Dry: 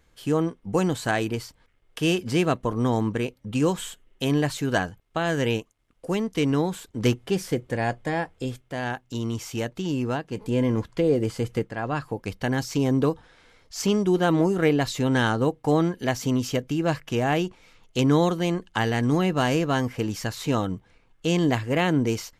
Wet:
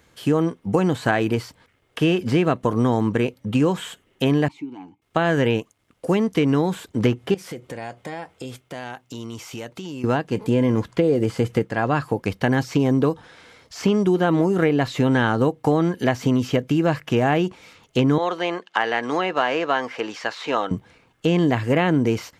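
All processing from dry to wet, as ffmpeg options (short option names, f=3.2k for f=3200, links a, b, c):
-filter_complex "[0:a]asettb=1/sr,asplit=3[a][b][c];[a]atrim=end=4.484[d];[b]atrim=start=4.48:end=5.02,asetpts=PTS-STARTPTS,afade=t=in:d=0.004:c=qsin,afade=t=out:st=0.536:d=0.004:c=qsin,acompressor=threshold=-28dB:ratio=16:attack=3.2:release=140:knee=1:detection=peak,asplit=3[e][f][g];[e]bandpass=f=300:t=q:w=8,volume=0dB[h];[f]bandpass=f=870:t=q:w=8,volume=-6dB[i];[g]bandpass=f=2.24k:t=q:w=8,volume=-9dB[j];[h][i][j]amix=inputs=3:normalize=0[k];[c]atrim=start=5.016[l];[d][k]acrossfade=d=0.004:c1=hsin:c2=qsin[m];[m][l]acrossfade=d=0.004:c1=qsin:c2=hsin,asettb=1/sr,asplit=3[n][o][p];[n]atrim=end=7.344[q];[o]atrim=start=7.34:end=10.04,asetpts=PTS-STARTPTS,afade=t=in:d=0.004:c=qsin,afade=t=out:st=2.696:d=0.004:c=qsin,lowshelf=f=340:g=-7,bandreject=f=1.7k:w=14,acompressor=threshold=-38dB:ratio=6:attack=3.2:release=140:knee=1:detection=peak[r];[p]atrim=start=10.036[s];[q][r]acrossfade=d=0.004:c1=hsin:c2=qsin[t];[t][s]acrossfade=d=0.004:c1=qsin:c2=hsin,asettb=1/sr,asplit=3[u][v][w];[u]atrim=end=18.184[x];[v]atrim=start=18.18:end=20.71,asetpts=PTS-STARTPTS,afade=t=in:d=0.004:c=qsin,afade=t=out:st=2.526:d=0.004:c=qsin,highpass=570,lowpass=4.6k,acompressor=mode=upward:threshold=-48dB:ratio=2.5:attack=3.2:release=140:knee=2.83:detection=peak,asoftclip=type=hard:threshold=-12.5dB[y];[w]atrim=start=20.706[z];[x][y]acrossfade=d=0.004:c1=hsin:c2=qsin[aa];[aa][z]acrossfade=d=0.004:c1=qsin:c2=hsin,acrossover=split=3100[ab][ac];[ac]acompressor=threshold=-48dB:ratio=4:attack=1:release=60[ad];[ab][ad]amix=inputs=2:normalize=0,highpass=90,acompressor=threshold=-24dB:ratio=4,volume=8.5dB"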